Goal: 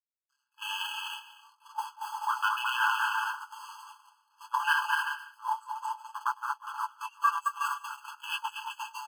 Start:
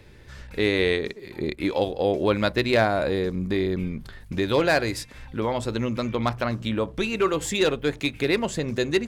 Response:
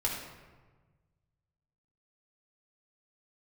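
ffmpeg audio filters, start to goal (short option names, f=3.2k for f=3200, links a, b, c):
-filter_complex "[0:a]afwtdn=0.0447,aeval=exprs='sgn(val(0))*max(abs(val(0))-0.00708,0)':c=same,flanger=delay=18.5:depth=6.6:speed=0.61,asplit=2[a][b];[b]aecho=0:1:220|363|456|516.4|555.6:0.631|0.398|0.251|0.158|0.1[c];[a][c]amix=inputs=2:normalize=0,agate=range=-17dB:threshold=-26dB:ratio=16:detection=peak,areverse,acompressor=mode=upward:threshold=-38dB:ratio=2.5,areverse,highpass=51,equalizer=f=1.8k:w=0.38:g=-14,aecho=1:1:6.9:0.58,alimiter=level_in=23.5dB:limit=-1dB:release=50:level=0:latency=1,afftfilt=real='re*eq(mod(floor(b*sr/1024/850),2),1)':imag='im*eq(mod(floor(b*sr/1024/850),2),1)':win_size=1024:overlap=0.75,volume=-3dB"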